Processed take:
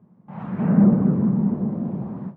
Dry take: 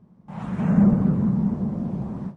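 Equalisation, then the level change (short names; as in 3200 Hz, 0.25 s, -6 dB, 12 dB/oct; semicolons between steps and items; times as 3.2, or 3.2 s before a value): dynamic EQ 350 Hz, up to +5 dB, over -31 dBFS, Q 0.98; BPF 110–2200 Hz; 0.0 dB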